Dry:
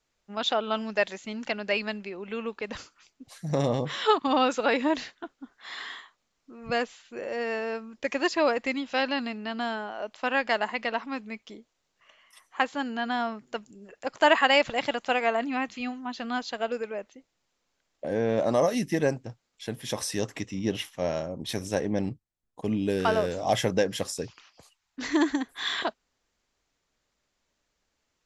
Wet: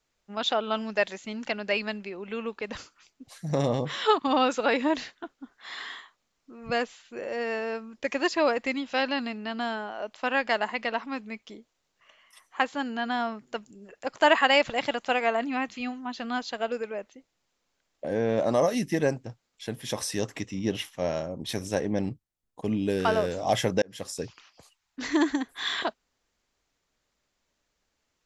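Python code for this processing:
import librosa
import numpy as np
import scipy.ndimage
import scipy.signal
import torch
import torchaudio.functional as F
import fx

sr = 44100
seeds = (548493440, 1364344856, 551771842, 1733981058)

y = fx.edit(x, sr, fx.fade_in_span(start_s=23.82, length_s=0.4), tone=tone)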